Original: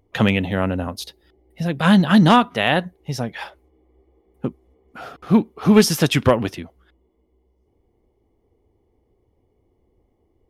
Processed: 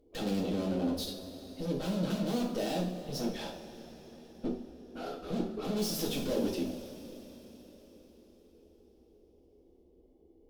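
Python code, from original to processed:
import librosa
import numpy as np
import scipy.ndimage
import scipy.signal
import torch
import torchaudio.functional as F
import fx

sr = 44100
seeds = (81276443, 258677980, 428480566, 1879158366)

y = fx.tube_stage(x, sr, drive_db=33.0, bias=0.6)
y = fx.graphic_eq(y, sr, hz=(125, 250, 500, 1000, 2000, 4000, 8000), db=(-10, 7, 8, -8, -11, 3, -4))
y = fx.rev_double_slope(y, sr, seeds[0], early_s=0.41, late_s=4.8, knee_db=-18, drr_db=-3.0)
y = y * 10.0 ** (-3.5 / 20.0)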